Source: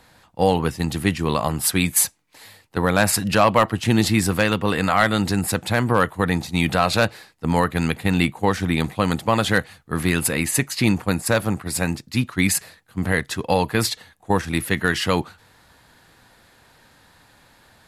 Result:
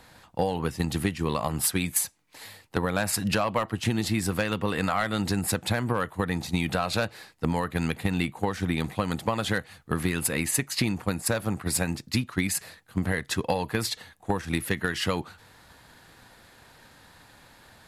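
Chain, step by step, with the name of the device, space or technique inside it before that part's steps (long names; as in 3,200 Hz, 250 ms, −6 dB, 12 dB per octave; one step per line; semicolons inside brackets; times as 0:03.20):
drum-bus smash (transient designer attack +5 dB, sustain 0 dB; downward compressor 6 to 1, threshold −22 dBFS, peak gain reduction 12.5 dB; soft clipping −10 dBFS, distortion −23 dB)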